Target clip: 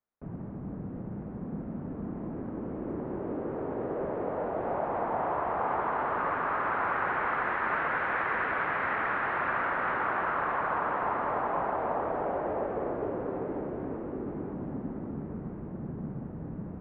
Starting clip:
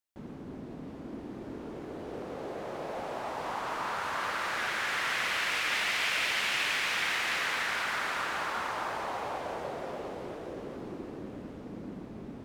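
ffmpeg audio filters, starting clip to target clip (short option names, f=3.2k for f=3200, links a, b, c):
-filter_complex "[0:a]acrossover=split=150|2400[a][b][c];[c]acrusher=bits=3:mix=0:aa=0.000001[d];[a][b][d]amix=inputs=3:normalize=0,asetrate=32667,aresample=44100,volume=4.5dB"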